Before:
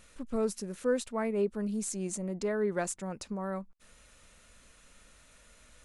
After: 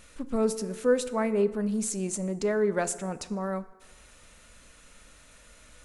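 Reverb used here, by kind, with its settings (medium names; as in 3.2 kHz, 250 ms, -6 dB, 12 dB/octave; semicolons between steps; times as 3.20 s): FDN reverb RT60 1.4 s, low-frequency decay 0.85×, high-frequency decay 0.55×, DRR 12 dB; trim +4.5 dB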